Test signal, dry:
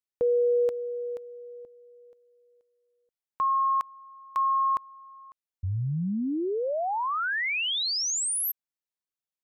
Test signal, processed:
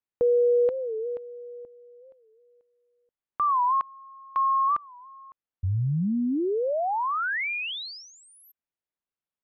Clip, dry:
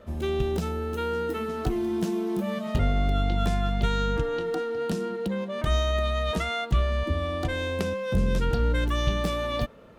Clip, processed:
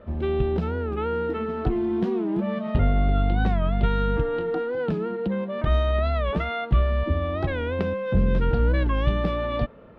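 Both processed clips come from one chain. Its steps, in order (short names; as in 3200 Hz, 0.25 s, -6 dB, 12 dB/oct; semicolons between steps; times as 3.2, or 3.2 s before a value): air absorption 390 m; record warp 45 rpm, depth 160 cents; gain +3.5 dB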